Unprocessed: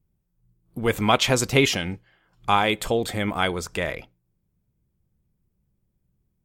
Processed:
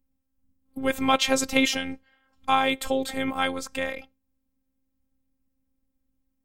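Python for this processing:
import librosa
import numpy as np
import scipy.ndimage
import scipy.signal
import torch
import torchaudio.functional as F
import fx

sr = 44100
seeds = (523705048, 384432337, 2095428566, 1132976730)

y = fx.robotise(x, sr, hz=266.0)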